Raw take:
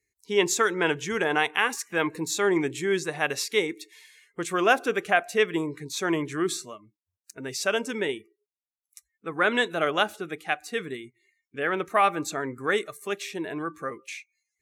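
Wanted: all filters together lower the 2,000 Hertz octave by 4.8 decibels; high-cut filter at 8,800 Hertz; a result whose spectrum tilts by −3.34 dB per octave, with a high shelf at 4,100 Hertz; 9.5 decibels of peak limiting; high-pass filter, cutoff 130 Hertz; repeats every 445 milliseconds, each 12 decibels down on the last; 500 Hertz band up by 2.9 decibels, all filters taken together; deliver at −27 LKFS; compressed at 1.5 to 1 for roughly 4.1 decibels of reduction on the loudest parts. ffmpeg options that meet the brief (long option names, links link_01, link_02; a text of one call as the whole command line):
ffmpeg -i in.wav -af "highpass=130,lowpass=8800,equalizer=frequency=500:width_type=o:gain=4,equalizer=frequency=2000:width_type=o:gain=-8,highshelf=frequency=4100:gain=4.5,acompressor=threshold=-26dB:ratio=1.5,alimiter=limit=-21.5dB:level=0:latency=1,aecho=1:1:445|890|1335:0.251|0.0628|0.0157,volume=5dB" out.wav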